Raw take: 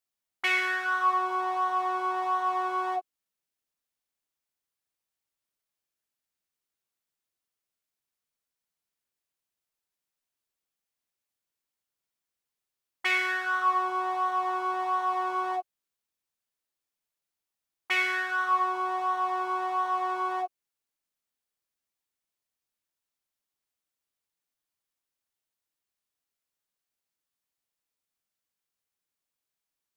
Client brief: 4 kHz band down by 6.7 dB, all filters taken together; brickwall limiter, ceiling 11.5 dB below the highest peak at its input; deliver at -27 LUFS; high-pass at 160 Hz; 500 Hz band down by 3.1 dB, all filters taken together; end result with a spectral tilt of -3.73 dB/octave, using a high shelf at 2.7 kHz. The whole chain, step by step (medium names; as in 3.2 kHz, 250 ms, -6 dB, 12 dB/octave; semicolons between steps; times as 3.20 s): high-pass 160 Hz; peaking EQ 500 Hz -5 dB; treble shelf 2.7 kHz -6.5 dB; peaking EQ 4 kHz -4 dB; trim +9 dB; peak limiter -20.5 dBFS